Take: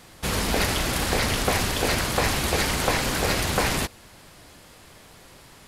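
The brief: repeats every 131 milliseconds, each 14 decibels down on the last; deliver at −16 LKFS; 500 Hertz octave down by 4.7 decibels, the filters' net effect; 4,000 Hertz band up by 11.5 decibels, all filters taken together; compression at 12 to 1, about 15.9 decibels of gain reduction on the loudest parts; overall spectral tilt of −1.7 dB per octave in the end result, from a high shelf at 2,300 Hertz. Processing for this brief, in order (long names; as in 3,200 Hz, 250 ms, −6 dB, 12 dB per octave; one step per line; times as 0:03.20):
parametric band 500 Hz −6.5 dB
high-shelf EQ 2,300 Hz +9 dB
parametric band 4,000 Hz +6 dB
downward compressor 12 to 1, threshold −30 dBFS
repeating echo 131 ms, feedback 20%, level −14 dB
level +16 dB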